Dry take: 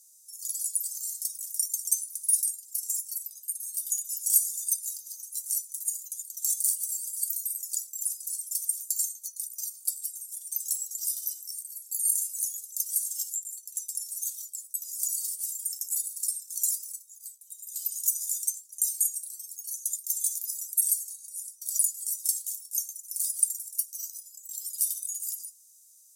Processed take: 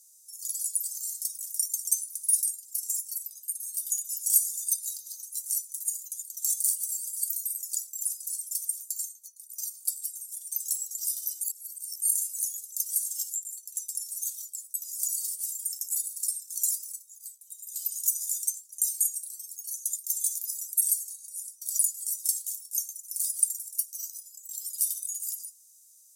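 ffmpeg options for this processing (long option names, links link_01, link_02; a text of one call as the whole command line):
ffmpeg -i in.wav -filter_complex "[0:a]asettb=1/sr,asplit=3[link_01][link_02][link_03];[link_01]atrim=end=4.704[link_04];[link_02]atrim=start=4.7:end=5.25,asetpts=PTS-STARTPTS,afade=type=in:duration=0.004:curve=qsin,afade=type=out:start_time=0.546:duration=0.004:curve=qsin,equalizer=frequency=4000:width=5:gain=9[link_05];[link_03]atrim=start=5.246[link_06];[link_04][link_05]acrossfade=duration=0.004:curve1=hsin:curve2=qsin[link_07];[link_07][link_06]acrossfade=duration=0.004:curve1=qsin:curve2=hsin,asplit=4[link_08][link_09][link_10][link_11];[link_08]atrim=end=9.49,asetpts=PTS-STARTPTS,afade=type=out:start_time=8.43:duration=1.06:silence=0.158489[link_12];[link_09]atrim=start=9.49:end=11.412,asetpts=PTS-STARTPTS,afade=type=in:duration=0.004:curve=hsin:silence=0.158489[link_13];[link_10]atrim=start=11.408:end=12.022,asetpts=PTS-STARTPTS,areverse[link_14];[link_11]atrim=start=12.018[link_15];[link_12][link_13]concat=n=2:v=0:a=1[link_16];[link_16][link_14]acrossfade=duration=0.004:curve1=hsin:curve2=hsin[link_17];[link_17][link_15]acrossfade=duration=0.004:curve1=hsin:curve2=hsin" out.wav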